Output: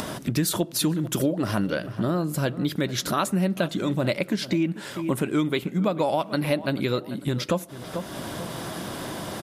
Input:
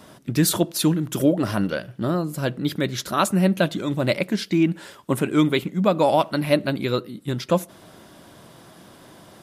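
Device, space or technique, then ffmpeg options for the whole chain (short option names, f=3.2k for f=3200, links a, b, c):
upward and downward compression: -filter_complex "[0:a]asplit=2[a][b];[b]adelay=441,lowpass=f=2.8k:p=1,volume=-19dB,asplit=2[c][d];[d]adelay=441,lowpass=f=2.8k:p=1,volume=0.25[e];[a][c][e]amix=inputs=3:normalize=0,acompressor=mode=upward:threshold=-20dB:ratio=2.5,acompressor=threshold=-20dB:ratio=5"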